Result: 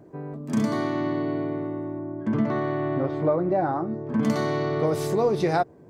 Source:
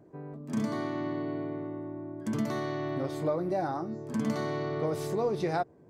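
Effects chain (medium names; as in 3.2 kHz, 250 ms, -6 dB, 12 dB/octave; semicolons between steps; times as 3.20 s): 1.99–4.23 s: low-pass 2 kHz 12 dB/octave; trim +7 dB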